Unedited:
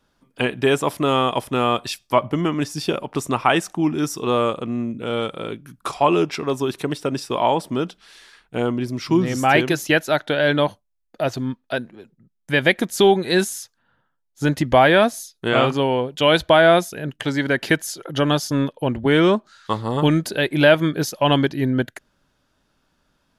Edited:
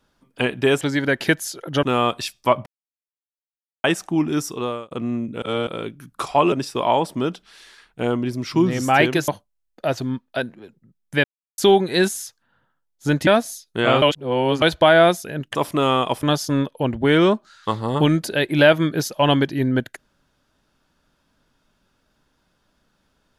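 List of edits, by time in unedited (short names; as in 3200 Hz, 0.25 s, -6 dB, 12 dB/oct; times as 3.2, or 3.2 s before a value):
0.81–1.49 swap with 17.23–18.25
2.32–3.5 mute
4.09–4.57 fade out
5.08–5.33 reverse
6.18–7.07 cut
9.83–10.64 cut
12.6–12.94 mute
14.63–14.95 cut
15.7–16.3 reverse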